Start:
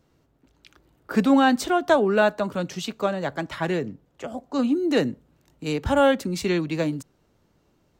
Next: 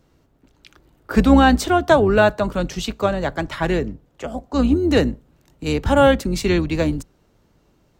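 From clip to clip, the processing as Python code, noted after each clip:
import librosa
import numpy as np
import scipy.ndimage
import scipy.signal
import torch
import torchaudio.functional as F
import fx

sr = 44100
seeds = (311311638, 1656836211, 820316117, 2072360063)

y = fx.octave_divider(x, sr, octaves=2, level_db=-4.0)
y = F.gain(torch.from_numpy(y), 4.5).numpy()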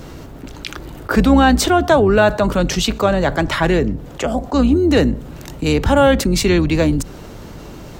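y = fx.env_flatten(x, sr, amount_pct=50)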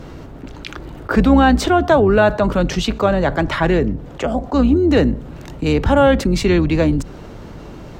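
y = fx.lowpass(x, sr, hz=2900.0, slope=6)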